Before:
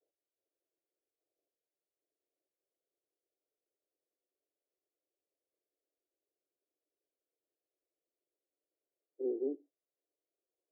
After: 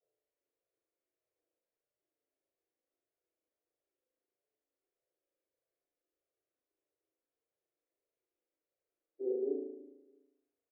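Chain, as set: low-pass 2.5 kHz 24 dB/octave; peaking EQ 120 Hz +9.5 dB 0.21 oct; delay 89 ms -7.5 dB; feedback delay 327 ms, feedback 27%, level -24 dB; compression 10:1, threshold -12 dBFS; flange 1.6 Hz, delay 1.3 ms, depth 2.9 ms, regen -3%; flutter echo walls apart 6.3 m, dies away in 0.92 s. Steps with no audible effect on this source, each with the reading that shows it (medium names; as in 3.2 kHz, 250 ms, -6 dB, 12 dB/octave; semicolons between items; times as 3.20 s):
low-pass 2.5 kHz: input has nothing above 600 Hz; peaking EQ 120 Hz: input has nothing below 240 Hz; compression, threshold -12 dBFS: peak at its input -25.5 dBFS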